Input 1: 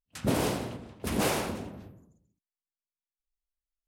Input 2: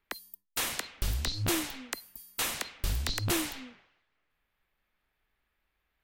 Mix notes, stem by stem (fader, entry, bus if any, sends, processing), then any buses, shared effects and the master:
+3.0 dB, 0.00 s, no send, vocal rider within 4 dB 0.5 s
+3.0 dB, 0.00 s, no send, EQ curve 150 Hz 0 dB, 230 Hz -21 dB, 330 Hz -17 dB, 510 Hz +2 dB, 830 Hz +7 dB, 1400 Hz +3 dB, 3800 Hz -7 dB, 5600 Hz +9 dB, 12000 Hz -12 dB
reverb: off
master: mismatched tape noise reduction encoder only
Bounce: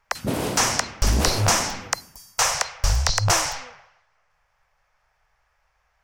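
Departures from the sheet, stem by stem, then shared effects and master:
stem 2 +3.0 dB -> +10.5 dB; master: missing mismatched tape noise reduction encoder only

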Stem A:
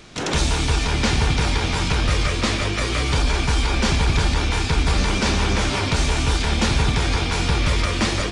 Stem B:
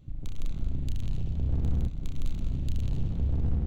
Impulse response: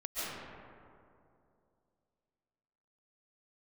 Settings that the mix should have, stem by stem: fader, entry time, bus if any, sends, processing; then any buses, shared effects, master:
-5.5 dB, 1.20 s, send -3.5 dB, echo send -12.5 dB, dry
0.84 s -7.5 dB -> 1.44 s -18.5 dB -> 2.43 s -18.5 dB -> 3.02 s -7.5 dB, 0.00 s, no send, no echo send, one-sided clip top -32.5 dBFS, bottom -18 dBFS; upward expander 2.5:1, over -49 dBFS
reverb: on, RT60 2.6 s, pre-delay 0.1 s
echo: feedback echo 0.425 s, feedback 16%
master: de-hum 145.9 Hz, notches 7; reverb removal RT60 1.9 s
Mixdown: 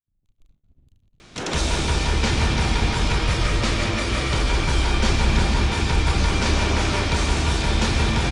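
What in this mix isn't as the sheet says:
stem B -7.5 dB -> -17.5 dB; master: missing reverb removal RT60 1.9 s

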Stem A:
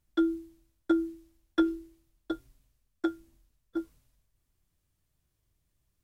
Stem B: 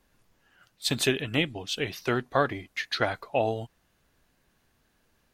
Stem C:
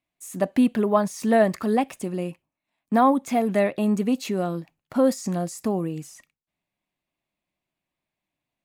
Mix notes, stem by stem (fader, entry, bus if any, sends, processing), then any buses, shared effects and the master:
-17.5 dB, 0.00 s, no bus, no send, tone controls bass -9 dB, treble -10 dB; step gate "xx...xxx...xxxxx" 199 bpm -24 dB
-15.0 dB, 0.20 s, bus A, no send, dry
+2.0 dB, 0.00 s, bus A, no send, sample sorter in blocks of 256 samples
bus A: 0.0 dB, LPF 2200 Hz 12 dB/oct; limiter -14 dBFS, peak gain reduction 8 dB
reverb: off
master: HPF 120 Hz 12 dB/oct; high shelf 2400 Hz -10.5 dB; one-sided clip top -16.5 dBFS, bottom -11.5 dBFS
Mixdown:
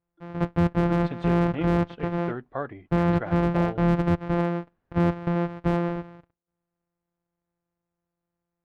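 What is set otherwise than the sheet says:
stem A -17.5 dB -> -10.5 dB; stem B -15.0 dB -> -6.0 dB; master: missing HPF 120 Hz 12 dB/oct

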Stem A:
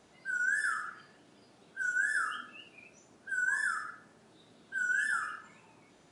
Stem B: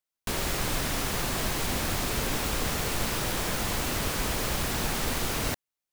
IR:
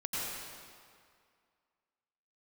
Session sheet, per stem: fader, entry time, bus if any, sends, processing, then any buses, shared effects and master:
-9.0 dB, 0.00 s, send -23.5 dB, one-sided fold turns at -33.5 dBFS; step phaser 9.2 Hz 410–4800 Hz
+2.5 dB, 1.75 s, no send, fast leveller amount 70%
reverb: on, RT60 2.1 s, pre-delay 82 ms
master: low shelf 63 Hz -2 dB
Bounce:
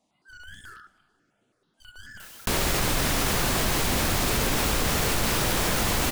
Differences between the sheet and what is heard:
stem B: entry 1.75 s -> 2.20 s; master: missing low shelf 63 Hz -2 dB

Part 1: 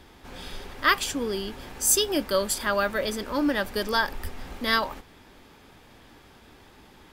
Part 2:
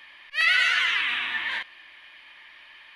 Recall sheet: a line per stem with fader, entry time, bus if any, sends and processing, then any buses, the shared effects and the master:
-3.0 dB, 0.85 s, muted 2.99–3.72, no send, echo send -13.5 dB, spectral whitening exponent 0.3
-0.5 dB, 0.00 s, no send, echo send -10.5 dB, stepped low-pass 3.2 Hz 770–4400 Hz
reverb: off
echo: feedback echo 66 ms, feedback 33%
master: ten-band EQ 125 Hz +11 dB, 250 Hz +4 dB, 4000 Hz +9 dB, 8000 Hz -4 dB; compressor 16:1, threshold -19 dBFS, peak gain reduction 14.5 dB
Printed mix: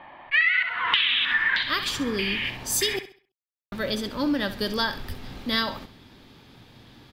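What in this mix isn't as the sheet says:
stem 1: missing spectral whitening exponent 0.3; stem 2 -0.5 dB -> +9.5 dB

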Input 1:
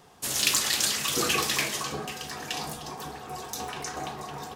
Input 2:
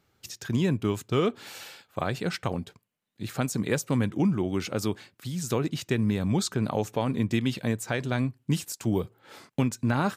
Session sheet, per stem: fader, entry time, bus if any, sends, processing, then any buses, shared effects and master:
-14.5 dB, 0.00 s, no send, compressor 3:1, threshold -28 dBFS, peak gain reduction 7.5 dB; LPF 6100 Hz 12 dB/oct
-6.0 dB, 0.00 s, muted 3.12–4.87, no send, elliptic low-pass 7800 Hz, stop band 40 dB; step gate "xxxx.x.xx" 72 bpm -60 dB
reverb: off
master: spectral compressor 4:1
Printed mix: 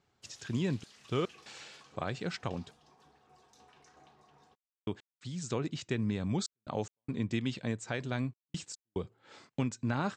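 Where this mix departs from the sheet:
stem 1 -14.5 dB -> -25.0 dB; master: missing spectral compressor 4:1

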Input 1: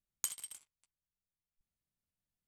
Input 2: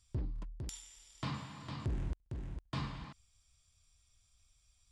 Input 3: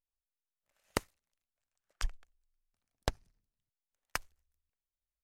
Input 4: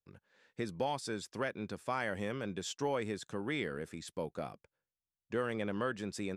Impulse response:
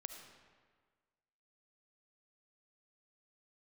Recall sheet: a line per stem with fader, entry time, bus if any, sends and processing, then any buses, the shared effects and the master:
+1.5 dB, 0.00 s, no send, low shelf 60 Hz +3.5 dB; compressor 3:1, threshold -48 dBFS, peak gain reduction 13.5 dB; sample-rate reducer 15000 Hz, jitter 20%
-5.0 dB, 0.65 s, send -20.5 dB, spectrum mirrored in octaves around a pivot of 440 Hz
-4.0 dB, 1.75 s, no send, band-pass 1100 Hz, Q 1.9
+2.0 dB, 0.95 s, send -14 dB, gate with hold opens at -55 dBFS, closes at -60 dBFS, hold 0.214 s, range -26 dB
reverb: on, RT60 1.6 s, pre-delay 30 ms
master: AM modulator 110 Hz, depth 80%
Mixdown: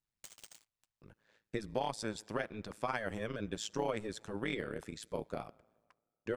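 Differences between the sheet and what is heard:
stem 2: muted; stem 3 -4.0 dB -> -15.0 dB

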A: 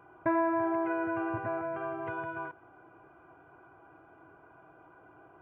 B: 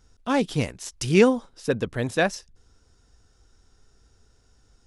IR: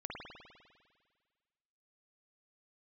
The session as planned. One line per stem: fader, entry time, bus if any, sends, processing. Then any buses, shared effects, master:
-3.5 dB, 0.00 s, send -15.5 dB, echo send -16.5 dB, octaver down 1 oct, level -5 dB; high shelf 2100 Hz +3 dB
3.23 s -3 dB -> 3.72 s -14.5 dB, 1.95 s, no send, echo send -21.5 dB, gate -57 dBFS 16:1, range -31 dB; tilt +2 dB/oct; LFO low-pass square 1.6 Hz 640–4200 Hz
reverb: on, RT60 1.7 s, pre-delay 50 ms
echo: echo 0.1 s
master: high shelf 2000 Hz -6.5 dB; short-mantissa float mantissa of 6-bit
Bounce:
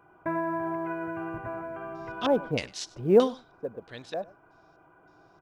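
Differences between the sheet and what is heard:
stem B: missing gate -57 dBFS 16:1, range -31 dB; master: missing high shelf 2000 Hz -6.5 dB

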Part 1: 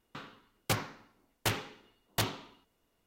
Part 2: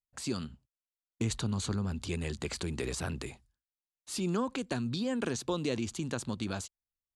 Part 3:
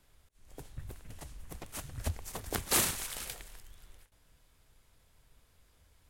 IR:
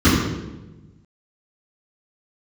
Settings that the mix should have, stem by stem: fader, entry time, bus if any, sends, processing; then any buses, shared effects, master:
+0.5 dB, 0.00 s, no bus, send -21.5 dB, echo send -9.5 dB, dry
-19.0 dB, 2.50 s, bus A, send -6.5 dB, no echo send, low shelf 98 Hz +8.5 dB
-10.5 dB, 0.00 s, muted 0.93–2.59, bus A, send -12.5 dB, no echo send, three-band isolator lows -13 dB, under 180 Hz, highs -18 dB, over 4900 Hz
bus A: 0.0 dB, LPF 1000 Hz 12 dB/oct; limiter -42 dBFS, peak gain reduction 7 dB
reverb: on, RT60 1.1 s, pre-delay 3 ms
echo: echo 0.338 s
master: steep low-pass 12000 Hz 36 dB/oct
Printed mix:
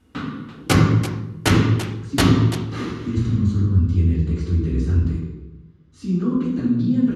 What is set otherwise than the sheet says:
stem 1 +0.5 dB -> +8.5 dB; stem 2: entry 2.50 s -> 1.85 s

